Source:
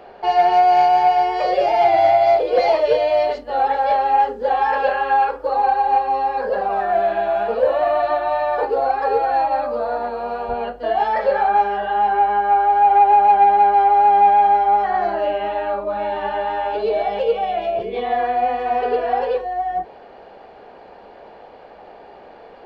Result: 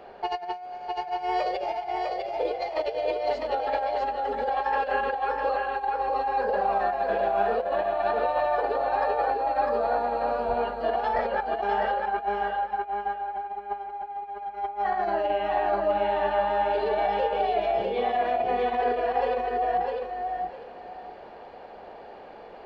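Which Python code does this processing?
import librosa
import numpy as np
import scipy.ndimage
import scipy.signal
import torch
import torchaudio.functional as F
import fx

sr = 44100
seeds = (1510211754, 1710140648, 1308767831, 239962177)

p1 = fx.over_compress(x, sr, threshold_db=-20.0, ratio=-0.5)
p2 = p1 + fx.echo_feedback(p1, sr, ms=652, feedback_pct=22, wet_db=-3.5, dry=0)
y = p2 * 10.0 ** (-7.5 / 20.0)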